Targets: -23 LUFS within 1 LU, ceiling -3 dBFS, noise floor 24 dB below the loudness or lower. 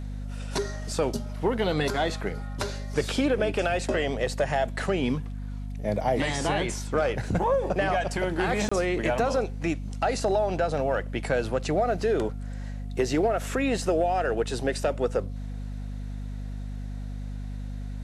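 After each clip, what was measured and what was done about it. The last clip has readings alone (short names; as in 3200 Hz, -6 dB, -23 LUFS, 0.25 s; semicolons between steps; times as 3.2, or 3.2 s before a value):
dropouts 1; longest dropout 25 ms; hum 50 Hz; harmonics up to 250 Hz; hum level -32 dBFS; loudness -28.0 LUFS; peak -13.5 dBFS; loudness target -23.0 LUFS
-> interpolate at 8.69, 25 ms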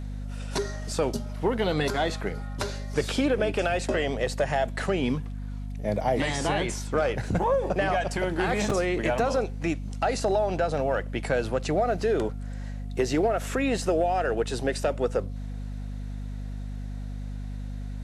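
dropouts 0; hum 50 Hz; harmonics up to 250 Hz; hum level -32 dBFS
-> de-hum 50 Hz, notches 5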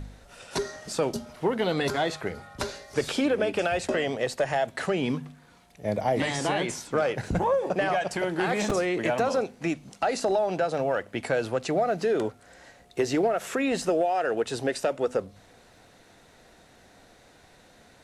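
hum none; loudness -27.5 LUFS; peak -12.0 dBFS; loudness target -23.0 LUFS
-> gain +4.5 dB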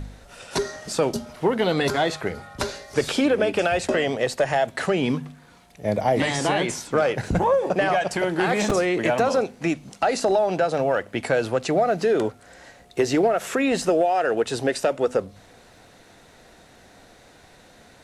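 loudness -23.0 LUFS; peak -7.5 dBFS; noise floor -52 dBFS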